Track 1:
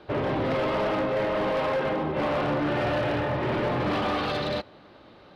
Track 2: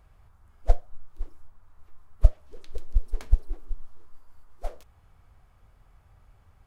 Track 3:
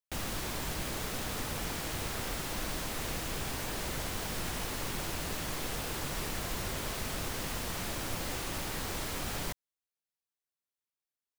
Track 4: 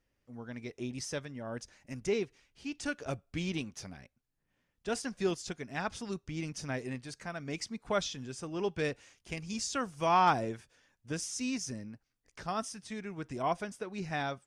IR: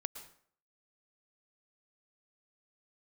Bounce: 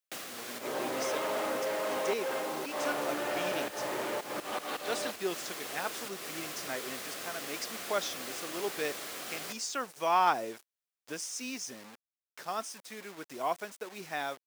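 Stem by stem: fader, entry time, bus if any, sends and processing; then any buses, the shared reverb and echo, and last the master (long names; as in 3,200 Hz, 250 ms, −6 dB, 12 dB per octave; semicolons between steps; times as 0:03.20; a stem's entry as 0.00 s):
−0.5 dB, 0.50 s, bus A, no send, no processing
−2.0 dB, 1.45 s, bus A, no send, no processing
+2.0 dB, 0.00 s, bus A, send −13 dB, notch filter 910 Hz, Q 5.3; automatic gain control gain up to 3 dB; automatic ducking −12 dB, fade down 0.25 s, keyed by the fourth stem
0.0 dB, 0.00 s, no bus, no send, bit-depth reduction 8 bits, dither none
bus A: 0.0 dB, volume swells 180 ms; downward compressor 2 to 1, threshold −35 dBFS, peak gain reduction 7.5 dB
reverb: on, RT60 0.55 s, pre-delay 102 ms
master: high-pass filter 370 Hz 12 dB per octave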